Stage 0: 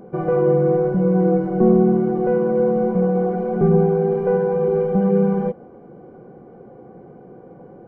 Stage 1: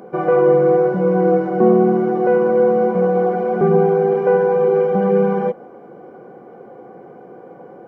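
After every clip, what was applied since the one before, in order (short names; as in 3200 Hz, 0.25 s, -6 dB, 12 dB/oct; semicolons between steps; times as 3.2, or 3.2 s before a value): HPF 670 Hz 6 dB/oct; gain +9 dB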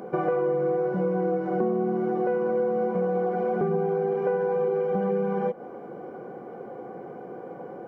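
compressor 6:1, threshold -23 dBFS, peak gain reduction 14 dB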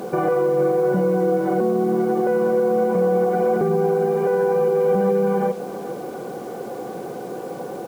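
limiter -20 dBFS, peak gain reduction 6 dB; bit-crush 9-bit; echo 0.445 s -15 dB; gain +8 dB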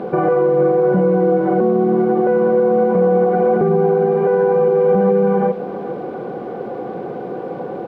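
air absorption 400 m; gain +5.5 dB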